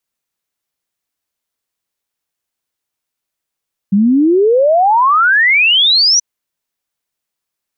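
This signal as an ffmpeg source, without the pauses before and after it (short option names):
-f lavfi -i "aevalsrc='0.447*clip(min(t,2.28-t)/0.01,0,1)*sin(2*PI*190*2.28/log(6000/190)*(exp(log(6000/190)*t/2.28)-1))':d=2.28:s=44100"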